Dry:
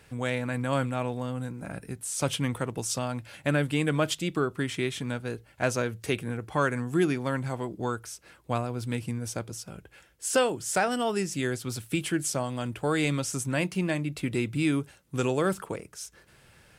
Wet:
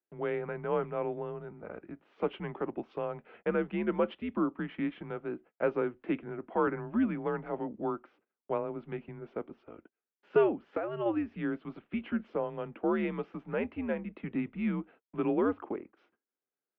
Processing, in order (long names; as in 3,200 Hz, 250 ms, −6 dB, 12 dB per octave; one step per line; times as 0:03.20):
noise gate −47 dBFS, range −34 dB
single-sideband voice off tune −100 Hz 360–3,100 Hz
0:10.61–0:11.06: downward compressor 6 to 1, threshold −29 dBFS, peak gain reduction 8.5 dB
tilt shelving filter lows +9 dB, about 1,500 Hz
0:06.67–0:07.59: multiband upward and downward compressor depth 40%
level −7 dB